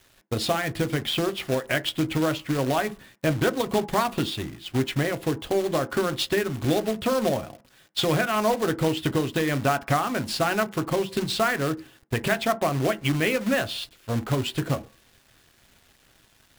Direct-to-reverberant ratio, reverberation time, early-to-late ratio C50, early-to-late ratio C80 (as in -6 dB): 9.5 dB, 0.40 s, 21.5 dB, 27.0 dB